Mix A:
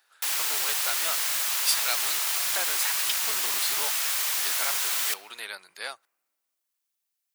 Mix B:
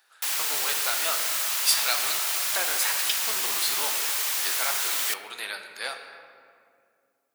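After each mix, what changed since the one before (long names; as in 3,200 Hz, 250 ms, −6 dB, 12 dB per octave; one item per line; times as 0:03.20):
speech: send on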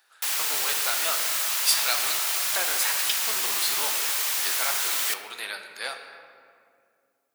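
background: send +6.5 dB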